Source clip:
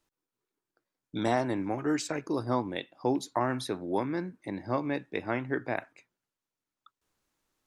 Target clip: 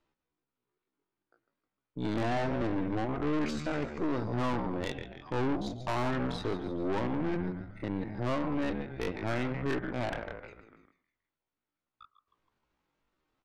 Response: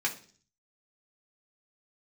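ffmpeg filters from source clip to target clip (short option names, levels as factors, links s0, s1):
-filter_complex "[0:a]acontrast=46,asplit=6[s0][s1][s2][s3][s4][s5];[s1]adelay=86,afreqshift=-78,volume=0.282[s6];[s2]adelay=172,afreqshift=-156,volume=0.145[s7];[s3]adelay=258,afreqshift=-234,volume=0.0733[s8];[s4]adelay=344,afreqshift=-312,volume=0.0376[s9];[s5]adelay=430,afreqshift=-390,volume=0.0191[s10];[s0][s6][s7][s8][s9][s10]amix=inputs=6:normalize=0,atempo=0.57,lowpass=3000,bandreject=f=1700:w=22,asplit=2[s11][s12];[1:a]atrim=start_sample=2205,lowpass=1100,adelay=107[s13];[s12][s13]afir=irnorm=-1:irlink=0,volume=0.0708[s14];[s11][s14]amix=inputs=2:normalize=0,aeval=exprs='(tanh(25.1*val(0)+0.7)-tanh(0.7))/25.1':c=same"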